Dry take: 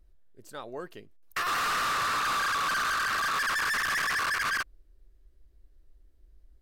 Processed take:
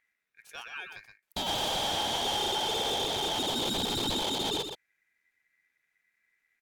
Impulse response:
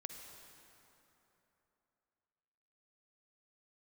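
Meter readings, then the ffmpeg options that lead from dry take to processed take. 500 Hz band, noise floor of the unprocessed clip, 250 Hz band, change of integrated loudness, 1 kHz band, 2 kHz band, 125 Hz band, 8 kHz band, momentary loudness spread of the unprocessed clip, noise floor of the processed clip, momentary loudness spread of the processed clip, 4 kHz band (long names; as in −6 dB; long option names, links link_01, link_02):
+7.5 dB, −61 dBFS, +10.0 dB, −2.0 dB, −5.0 dB, −13.5 dB, +6.5 dB, 0.0 dB, 14 LU, −81 dBFS, 15 LU, +6.5 dB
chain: -af "highpass=110,aeval=exprs='val(0)*sin(2*PI*2000*n/s)':channel_layout=same,aecho=1:1:122:0.447"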